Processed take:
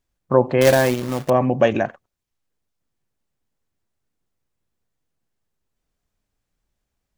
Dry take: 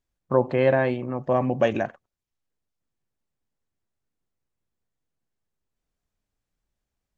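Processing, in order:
0:00.61–0:01.30: log-companded quantiser 4 bits
level +5 dB

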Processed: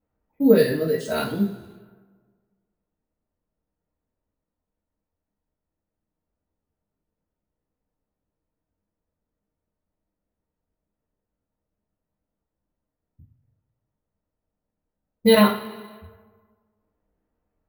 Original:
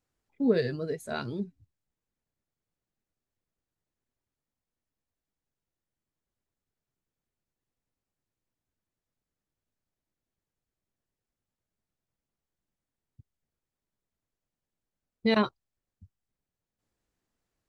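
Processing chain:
coupled-rooms reverb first 0.33 s, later 1.6 s, from −17 dB, DRR −6.5 dB
low-pass that shuts in the quiet parts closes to 1,100 Hz, open at −30.5 dBFS
bad sample-rate conversion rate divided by 3×, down none, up hold
level +1.5 dB

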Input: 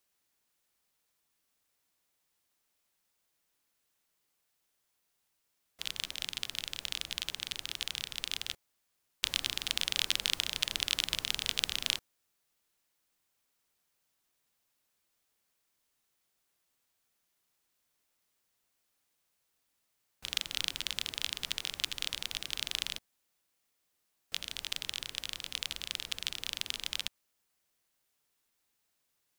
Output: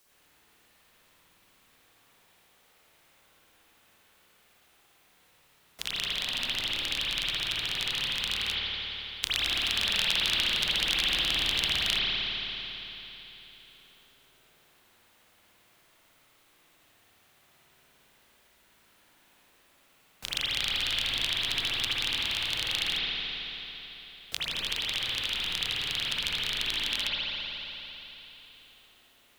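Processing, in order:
spring reverb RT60 2.6 s, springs 55 ms, chirp 30 ms, DRR −9 dB
multiband upward and downward compressor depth 40%

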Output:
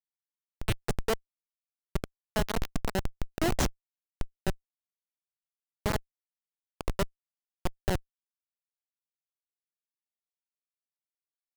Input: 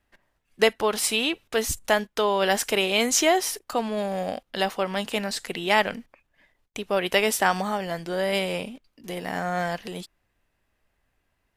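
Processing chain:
slices reordered back to front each 153 ms, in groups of 4
comparator with hysteresis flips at −15.5 dBFS
level +2 dB

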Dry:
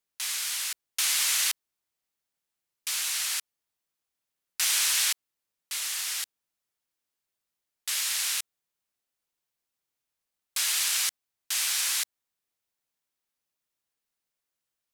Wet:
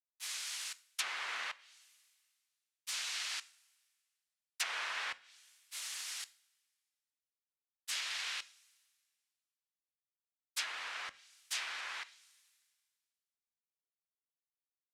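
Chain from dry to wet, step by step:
downward expander −23 dBFS
coupled-rooms reverb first 0.38 s, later 1.8 s, from −19 dB, DRR 14.5 dB
treble cut that deepens with the level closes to 1,500 Hz, closed at −26.5 dBFS
level +1 dB

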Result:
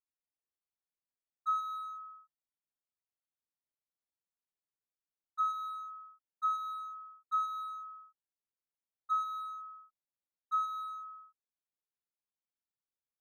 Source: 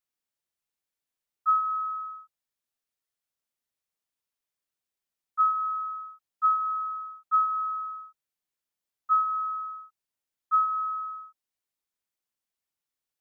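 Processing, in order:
adaptive Wiener filter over 15 samples
level −8.5 dB

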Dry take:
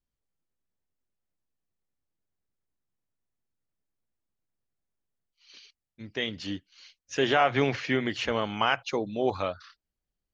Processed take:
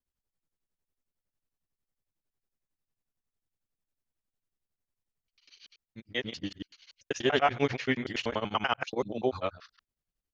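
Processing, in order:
reversed piece by piece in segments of 96 ms
tremolo along a rectified sine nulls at 11 Hz

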